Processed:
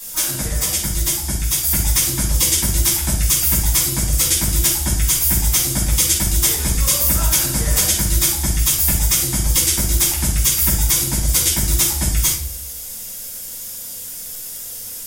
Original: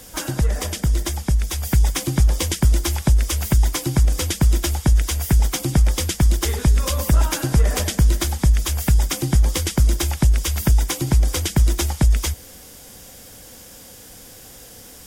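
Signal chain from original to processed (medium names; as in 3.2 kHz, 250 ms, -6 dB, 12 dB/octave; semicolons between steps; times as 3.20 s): pre-emphasis filter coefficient 0.9; simulated room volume 620 m³, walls furnished, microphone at 9.1 m; trim +2.5 dB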